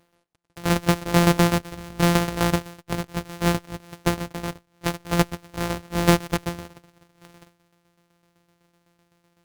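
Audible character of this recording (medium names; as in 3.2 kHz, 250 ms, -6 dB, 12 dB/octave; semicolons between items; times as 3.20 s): a buzz of ramps at a fixed pitch in blocks of 256 samples; tremolo saw down 7.9 Hz, depth 65%; Opus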